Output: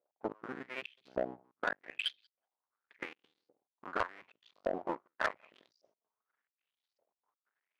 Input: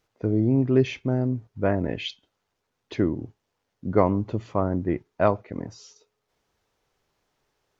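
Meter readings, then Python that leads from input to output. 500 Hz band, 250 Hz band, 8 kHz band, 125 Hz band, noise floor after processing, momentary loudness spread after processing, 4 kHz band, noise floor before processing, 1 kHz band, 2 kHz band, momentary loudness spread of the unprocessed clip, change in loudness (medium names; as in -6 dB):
-15.5 dB, -23.0 dB, no reading, -33.5 dB, under -85 dBFS, 10 LU, -4.0 dB, -79 dBFS, -9.0 dB, -1.0 dB, 14 LU, -14.5 dB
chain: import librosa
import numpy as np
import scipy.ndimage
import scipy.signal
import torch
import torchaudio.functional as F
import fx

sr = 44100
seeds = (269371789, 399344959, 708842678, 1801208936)

p1 = fx.cycle_switch(x, sr, every=2, mode='muted')
p2 = fx.peak_eq(p1, sr, hz=310.0, db=3.0, octaves=1.7)
p3 = p2 + fx.echo_feedback(p2, sr, ms=187, feedback_pct=20, wet_db=-19.0, dry=0)
p4 = fx.filter_lfo_bandpass(p3, sr, shape='saw_up', hz=0.86, low_hz=560.0, high_hz=5000.0, q=4.6)
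p5 = np.sign(p4) * np.maximum(np.abs(p4) - 10.0 ** (-50.5 / 20.0), 0.0)
p6 = p4 + (p5 * librosa.db_to_amplitude(-8.0))
p7 = fx.high_shelf(p6, sr, hz=3900.0, db=-8.0)
p8 = fx.transient(p7, sr, attack_db=7, sustain_db=-4)
p9 = fx.step_gate(p8, sr, bpm=139, pattern='x.x.xxxx.xxxx', floor_db=-24.0, edge_ms=4.5)
p10 = scipy.signal.sosfilt(scipy.signal.butter(2, 110.0, 'highpass', fs=sr, output='sos'), p9)
p11 = 10.0 ** (-23.5 / 20.0) * np.tanh(p10 / 10.0 ** (-23.5 / 20.0))
y = p11 * librosa.db_to_amplitude(1.0)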